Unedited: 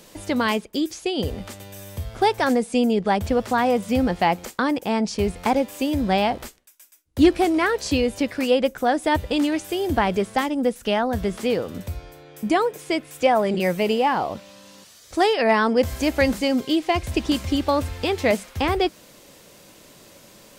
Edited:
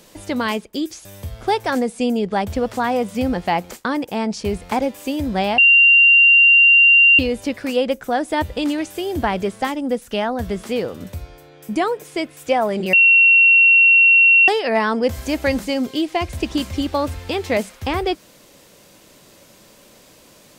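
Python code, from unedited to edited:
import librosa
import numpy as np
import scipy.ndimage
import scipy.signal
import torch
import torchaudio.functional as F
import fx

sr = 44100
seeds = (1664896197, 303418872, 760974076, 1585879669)

y = fx.edit(x, sr, fx.cut(start_s=1.05, length_s=0.74),
    fx.bleep(start_s=6.32, length_s=1.61, hz=2770.0, db=-7.5),
    fx.bleep(start_s=13.67, length_s=1.55, hz=2730.0, db=-8.0), tone=tone)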